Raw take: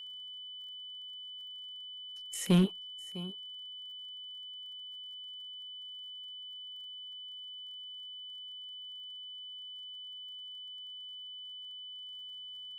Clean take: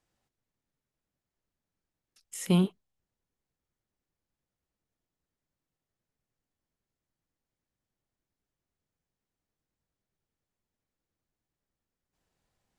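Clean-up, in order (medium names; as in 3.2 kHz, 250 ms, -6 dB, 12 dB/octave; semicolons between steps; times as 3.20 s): clip repair -19 dBFS; de-click; band-stop 3 kHz, Q 30; inverse comb 653 ms -18 dB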